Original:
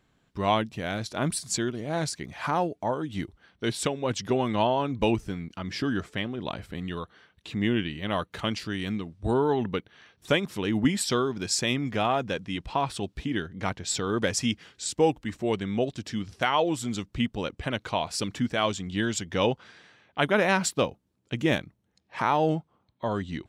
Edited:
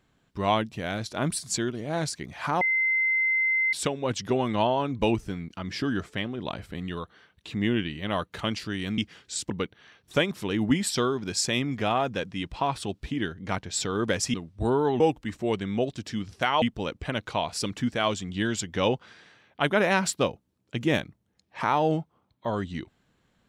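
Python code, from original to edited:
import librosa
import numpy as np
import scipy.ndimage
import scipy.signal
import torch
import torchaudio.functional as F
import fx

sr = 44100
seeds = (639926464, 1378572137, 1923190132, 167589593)

y = fx.edit(x, sr, fx.bleep(start_s=2.61, length_s=1.12, hz=2070.0, db=-21.0),
    fx.swap(start_s=8.98, length_s=0.66, other_s=14.48, other_length_s=0.52),
    fx.cut(start_s=16.62, length_s=0.58), tone=tone)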